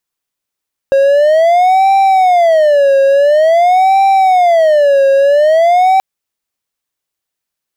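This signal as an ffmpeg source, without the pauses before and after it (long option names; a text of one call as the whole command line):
ffmpeg -f lavfi -i "aevalsrc='0.668*(1-4*abs(mod((663*t-118/(2*PI*0.48)*sin(2*PI*0.48*t))+0.25,1)-0.5))':duration=5.08:sample_rate=44100" out.wav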